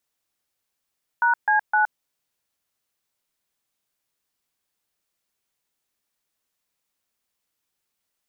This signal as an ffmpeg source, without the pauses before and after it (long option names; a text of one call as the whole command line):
ffmpeg -f lavfi -i "aevalsrc='0.119*clip(min(mod(t,0.257),0.118-mod(t,0.257))/0.002,0,1)*(eq(floor(t/0.257),0)*(sin(2*PI*941*mod(t,0.257))+sin(2*PI*1477*mod(t,0.257)))+eq(floor(t/0.257),1)*(sin(2*PI*852*mod(t,0.257))+sin(2*PI*1633*mod(t,0.257)))+eq(floor(t/0.257),2)*(sin(2*PI*852*mod(t,0.257))+sin(2*PI*1477*mod(t,0.257))))':duration=0.771:sample_rate=44100" out.wav